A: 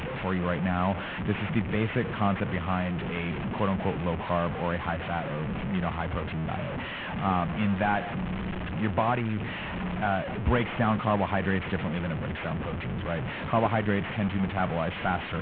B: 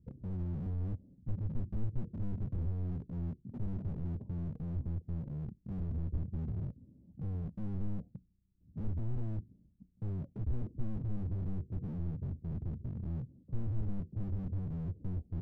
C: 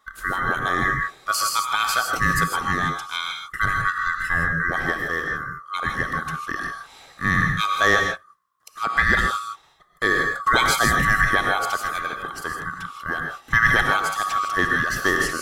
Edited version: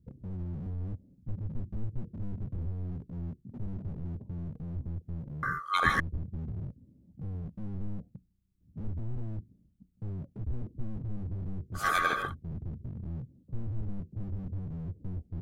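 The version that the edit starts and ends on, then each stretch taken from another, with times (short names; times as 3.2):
B
5.43–6 from C
11.82–12.27 from C, crossfade 0.16 s
not used: A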